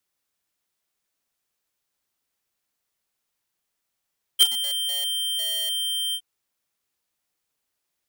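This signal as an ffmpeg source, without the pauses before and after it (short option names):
-f lavfi -i "aevalsrc='0.251*(2*lt(mod(3150*t,1),0.5)-1)':d=1.815:s=44100,afade=t=in:d=0.026,afade=t=out:st=0.026:d=0.046:silence=0.188,afade=t=out:st=1.75:d=0.065"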